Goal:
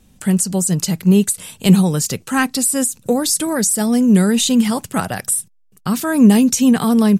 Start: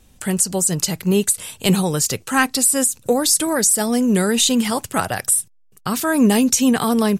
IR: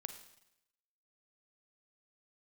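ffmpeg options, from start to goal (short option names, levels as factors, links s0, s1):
-af "equalizer=f=190:t=o:w=1:g=8.5,volume=0.841"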